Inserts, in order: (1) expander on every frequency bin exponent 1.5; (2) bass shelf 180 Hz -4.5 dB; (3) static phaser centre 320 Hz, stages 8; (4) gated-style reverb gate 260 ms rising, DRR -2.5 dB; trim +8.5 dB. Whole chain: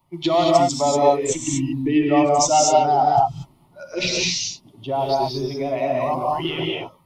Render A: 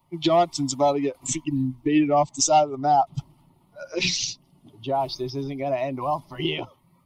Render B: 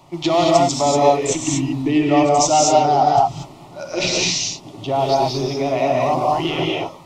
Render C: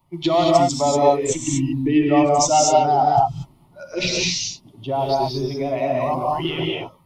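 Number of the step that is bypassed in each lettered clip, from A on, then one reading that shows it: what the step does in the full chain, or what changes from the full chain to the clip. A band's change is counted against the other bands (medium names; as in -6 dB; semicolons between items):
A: 4, loudness change -4.0 LU; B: 1, loudness change +2.5 LU; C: 2, 125 Hz band +2.5 dB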